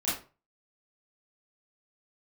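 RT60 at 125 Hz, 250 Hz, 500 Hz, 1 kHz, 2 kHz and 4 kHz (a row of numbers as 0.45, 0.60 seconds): 0.45, 0.35, 0.35, 0.35, 0.30, 0.25 seconds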